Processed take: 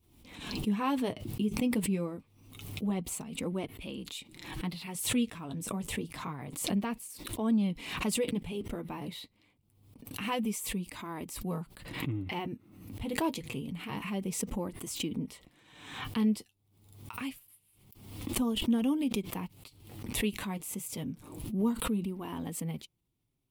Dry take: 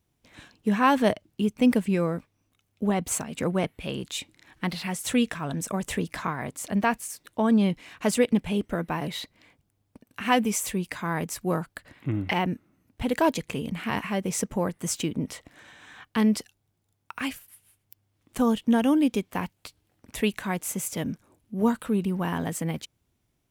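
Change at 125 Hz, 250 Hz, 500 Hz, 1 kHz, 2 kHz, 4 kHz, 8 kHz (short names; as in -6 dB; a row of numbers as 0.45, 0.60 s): -6.0, -6.5, -9.5, -11.0, -9.0, -3.5, -5.5 dB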